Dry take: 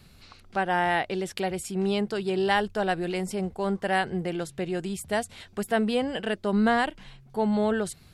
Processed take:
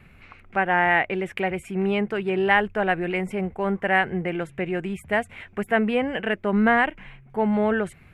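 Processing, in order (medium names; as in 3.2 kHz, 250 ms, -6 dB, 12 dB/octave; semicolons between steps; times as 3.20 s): resonant high shelf 3.2 kHz -12 dB, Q 3; trim +2.5 dB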